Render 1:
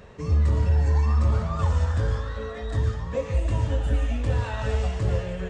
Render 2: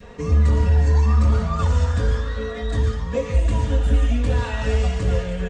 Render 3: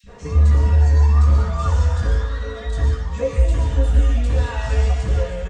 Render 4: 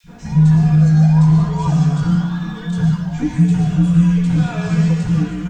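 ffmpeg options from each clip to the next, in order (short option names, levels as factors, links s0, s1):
-af "aecho=1:1:4.2:0.56,adynamicequalizer=threshold=0.00631:dfrequency=740:dqfactor=0.8:tfrequency=740:tqfactor=0.8:attack=5:release=100:ratio=0.375:range=2:mode=cutabove:tftype=bell,volume=1.78"
-filter_complex "[0:a]asplit=2[s0][s1];[s1]adelay=15,volume=0.473[s2];[s0][s2]amix=inputs=2:normalize=0,acrossover=split=200|2700[s3][s4][s5];[s3]adelay=30[s6];[s4]adelay=60[s7];[s6][s7][s5]amix=inputs=3:normalize=0"
-af "acrusher=bits=10:mix=0:aa=0.000001,afreqshift=-230,volume=1.26"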